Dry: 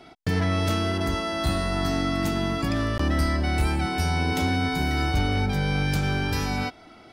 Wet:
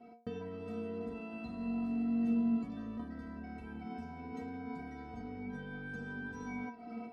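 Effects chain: AGC gain up to 11 dB; limiter -12 dBFS, peak gain reduction 8 dB; compressor 6:1, threshold -30 dBFS, peak gain reduction 13.5 dB; band-pass 240 Hz, Q 0.57; metallic resonator 230 Hz, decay 0.42 s, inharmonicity 0.008; gain +13 dB

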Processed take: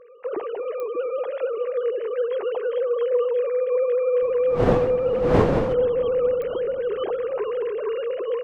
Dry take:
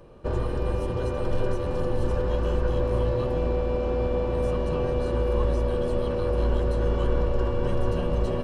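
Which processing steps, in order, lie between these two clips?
sine-wave speech; 4.21–5.72 wind noise 530 Hz -26 dBFS; analogue delay 0.231 s, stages 2048, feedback 72%, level -16 dB; pops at 0.8/6.42, -21 dBFS

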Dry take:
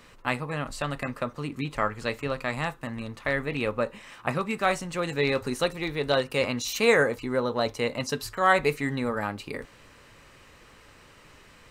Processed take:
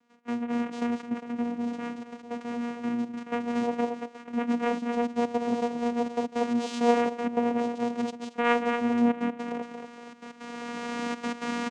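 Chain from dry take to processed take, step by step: recorder AGC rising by 15 dB/s; thinning echo 0.23 s, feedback 36%, high-pass 170 Hz, level -6 dB; harmonic-percussive split percussive -7 dB; doubler 24 ms -13.5 dB; 1.43–2.81 overloaded stage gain 29 dB; step gate ".x.xxxxxxxx" 163 bpm -12 dB; vocoder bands 4, saw 238 Hz

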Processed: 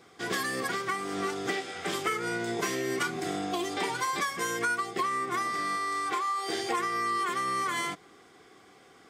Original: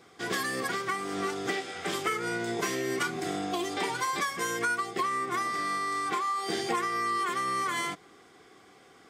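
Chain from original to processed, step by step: 5.76–6.79 bell 180 Hz -13 dB 0.61 oct

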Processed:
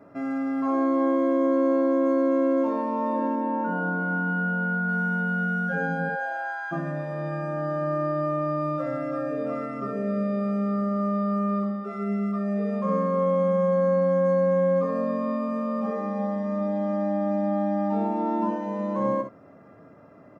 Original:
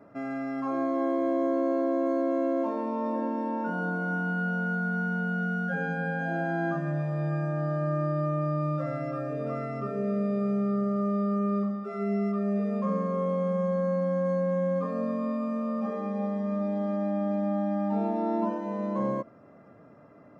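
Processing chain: 3.35–4.89 air absorption 180 m; 6.08–6.71 HPF 430 Hz -> 1100 Hz 24 dB/oct; early reflections 11 ms -12 dB, 63 ms -7 dB; gain +2 dB

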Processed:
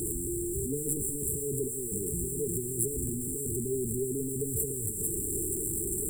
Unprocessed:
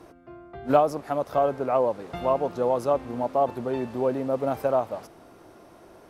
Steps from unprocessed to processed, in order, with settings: zero-crossing step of -21.5 dBFS; FFT band-reject 460–7300 Hz; in parallel at 0 dB: limiter -21.5 dBFS, peak gain reduction 9 dB; on the sum: ten-band EQ 250 Hz -10 dB, 1000 Hz -7 dB, 2000 Hz -10 dB, 4000 Hz +3 dB, 8000 Hz +10 dB; gain -6.5 dB

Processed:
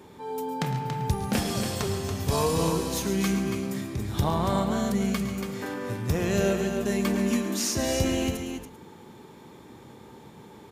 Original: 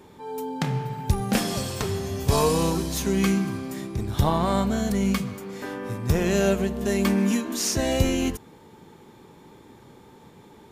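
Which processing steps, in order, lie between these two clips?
HPF 52 Hz; in parallel at +1 dB: compressor, threshold -31 dBFS, peak gain reduction 15 dB; on the sum: tapped delay 0.109/0.128/0.131/0.141/0.282/0.391 s -14/-19/-20/-14.5/-6.5/-19.5 dB; gain -6 dB

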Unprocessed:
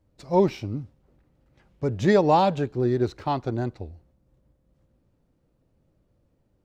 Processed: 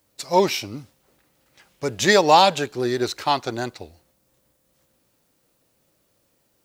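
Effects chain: tilt +4.5 dB/oct; gain +7 dB

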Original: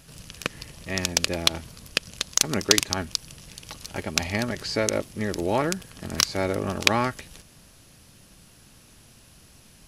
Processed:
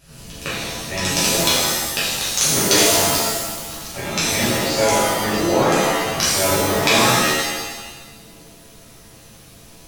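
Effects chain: shimmer reverb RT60 1.2 s, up +7 st, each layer -2 dB, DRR -10 dB; gain -5 dB

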